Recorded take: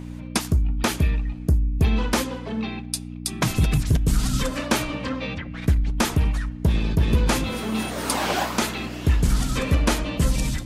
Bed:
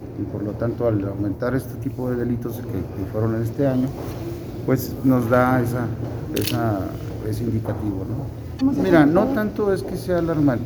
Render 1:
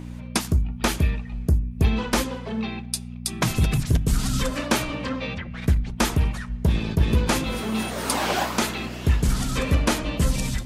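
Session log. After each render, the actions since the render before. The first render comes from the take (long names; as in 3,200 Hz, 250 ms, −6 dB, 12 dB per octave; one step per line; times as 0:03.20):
hum removal 50 Hz, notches 6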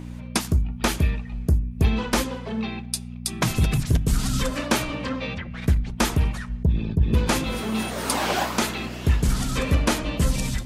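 0:06.63–0:07.14: spectral envelope exaggerated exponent 1.5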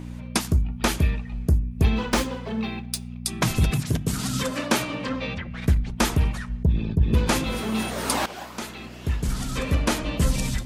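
0:01.95–0:03.19: running median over 3 samples
0:03.70–0:05.09: high-pass filter 110 Hz
0:08.26–0:10.25: fade in, from −15.5 dB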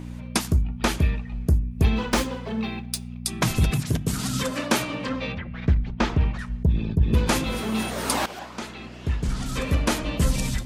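0:00.60–0:01.46: high-shelf EQ 9,200 Hz → 6,300 Hz −6.5 dB
0:05.32–0:06.39: high-frequency loss of the air 190 metres
0:08.39–0:09.46: high-frequency loss of the air 51 metres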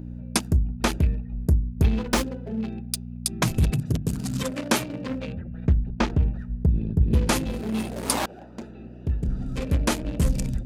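adaptive Wiener filter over 41 samples
high-shelf EQ 6,400 Hz +4 dB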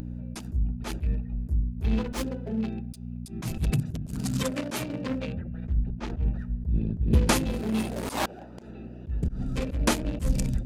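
volume swells 115 ms
upward compression, threshold −38 dBFS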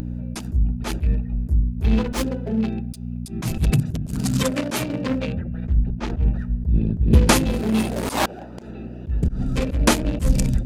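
level +7 dB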